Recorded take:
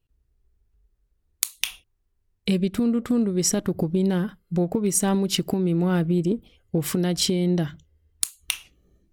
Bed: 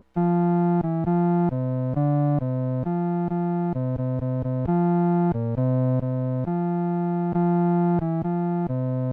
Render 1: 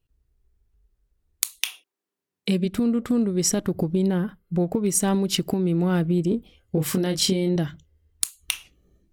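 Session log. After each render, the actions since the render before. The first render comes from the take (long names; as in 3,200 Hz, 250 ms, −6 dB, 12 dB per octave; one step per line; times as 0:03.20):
0:01.59–0:02.64: high-pass filter 370 Hz → 130 Hz 24 dB per octave
0:04.08–0:04.60: parametric band 5,800 Hz −9.5 dB 1.7 octaves
0:06.29–0:07.56: double-tracking delay 26 ms −6 dB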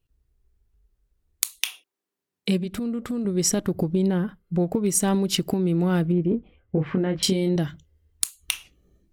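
0:02.57–0:03.25: downward compressor 2.5 to 1, threshold −27 dBFS
0:03.89–0:04.63: high-shelf EQ 9,900 Hz −7.5 dB
0:06.12–0:07.23: low-pass filter 2,300 Hz 24 dB per octave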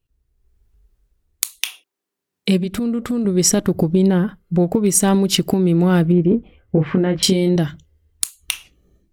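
automatic gain control gain up to 8 dB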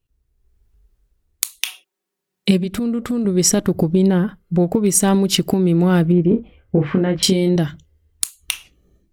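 0:01.66–0:02.51: comb filter 5.4 ms
0:06.23–0:07.10: double-tracking delay 41 ms −11 dB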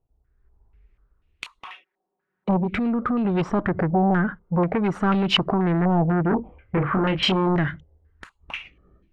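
soft clipping −18 dBFS, distortion −9 dB
low-pass on a step sequencer 4.1 Hz 760–2,700 Hz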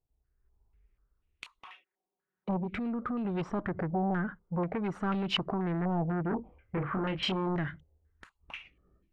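level −10.5 dB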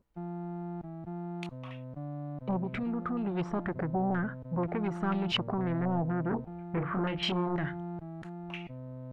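mix in bed −18 dB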